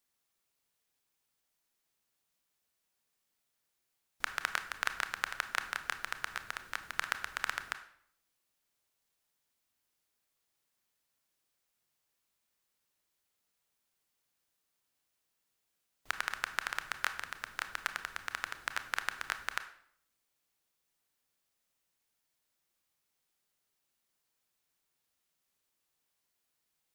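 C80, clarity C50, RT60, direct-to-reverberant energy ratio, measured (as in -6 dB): 15.5 dB, 12.5 dB, 0.65 s, 9.5 dB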